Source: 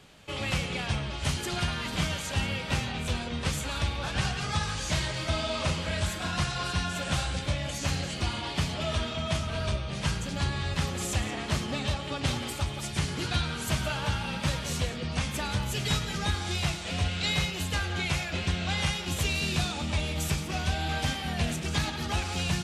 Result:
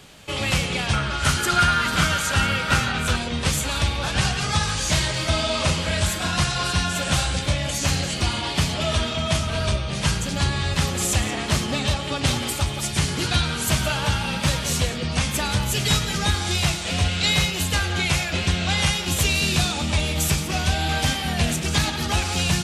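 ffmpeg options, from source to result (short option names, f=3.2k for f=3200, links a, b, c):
-filter_complex "[0:a]asettb=1/sr,asplit=3[a][b][c];[a]atrim=end=0.934[d];[b]atrim=start=0.93:end=3.16,asetpts=PTS-STARTPTS,afade=t=in:d=0.004:c=qsin,afade=t=out:st=2.226:d=0.004:c=qsin,equalizer=f=1.4k:w=3.7:g=14.5[e];[c]atrim=start=3.156[f];[d][e]acrossfade=d=0.004:c1=hsin:c2=qsin[g];[g][f]acrossfade=d=0.004:c1=qsin:c2=hsin,highshelf=f=5.6k:g=6.5,acontrast=76"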